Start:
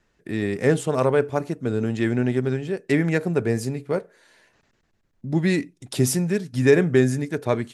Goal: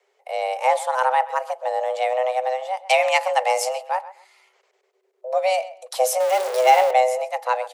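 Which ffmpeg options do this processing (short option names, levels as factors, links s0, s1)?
-filter_complex "[0:a]asettb=1/sr,asplit=3[s0][s1][s2];[s0]atrim=end=6.204[s3];[s1]atrim=start=6.2:end=6.91,asetpts=PTS-STARTPTS,afade=t=in:d=0.004:c=qsin,afade=t=out:st=0.706:d=0.004:c=qsin,aeval=exprs='val(0)+0.5*0.0794*sgn(val(0))':c=same[s4];[s2]atrim=start=6.906[s5];[s3][s4]acrossfade=d=0.004:c1=hsin:c2=qsin[s6];[s6][s5]acrossfade=d=0.004:c1=qsin:c2=hsin,afreqshift=380,asettb=1/sr,asplit=3[s7][s8][s9];[s7]atrim=end=2.864[s10];[s8]atrim=start=2.86:end=3.83,asetpts=PTS-STARTPTS,afade=t=in:d=0.004:c=qsin,afade=t=out:st=0.966:d=0.004:c=qsin,equalizer=f=5300:w=0.33:g=10.5[s11];[s9]atrim=start=3.826[s12];[s10][s11]acrossfade=d=0.004:c1=hsin:c2=qsin[s13];[s13][s12]acrossfade=d=0.004:c1=qsin:c2=hsin,asplit=2[s14][s15];[s15]adelay=128,lowpass=f=2900:p=1,volume=0.168,asplit=2[s16][s17];[s17]adelay=128,lowpass=f=2900:p=1,volume=0.21[s18];[s14][s16][s18]amix=inputs=3:normalize=0"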